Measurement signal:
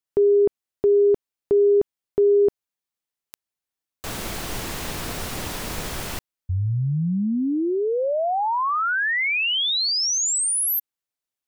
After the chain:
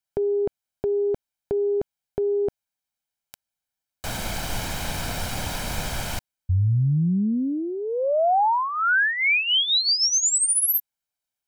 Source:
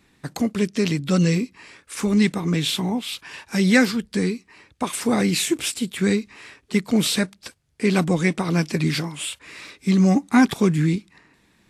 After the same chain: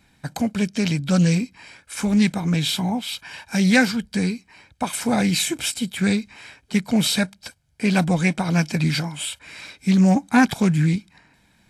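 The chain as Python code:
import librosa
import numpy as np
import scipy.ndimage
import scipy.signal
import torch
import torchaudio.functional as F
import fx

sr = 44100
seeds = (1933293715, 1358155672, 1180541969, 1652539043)

y = x + 0.54 * np.pad(x, (int(1.3 * sr / 1000.0), 0))[:len(x)]
y = fx.doppler_dist(y, sr, depth_ms=0.11)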